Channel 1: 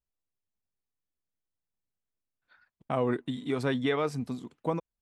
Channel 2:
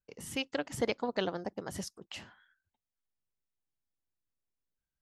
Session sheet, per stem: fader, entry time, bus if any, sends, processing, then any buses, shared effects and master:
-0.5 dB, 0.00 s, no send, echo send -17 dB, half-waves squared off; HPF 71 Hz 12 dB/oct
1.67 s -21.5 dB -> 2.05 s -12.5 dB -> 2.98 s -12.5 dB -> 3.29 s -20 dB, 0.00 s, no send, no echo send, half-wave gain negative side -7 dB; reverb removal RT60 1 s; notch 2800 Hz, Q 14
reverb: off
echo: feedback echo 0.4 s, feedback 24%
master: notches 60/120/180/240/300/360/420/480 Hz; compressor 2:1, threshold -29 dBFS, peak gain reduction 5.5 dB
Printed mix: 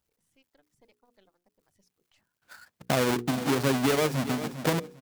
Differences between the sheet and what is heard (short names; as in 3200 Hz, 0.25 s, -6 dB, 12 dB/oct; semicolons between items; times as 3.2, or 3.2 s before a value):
stem 1 -0.5 dB -> +9.5 dB; stem 2 -21.5 dB -> -28.5 dB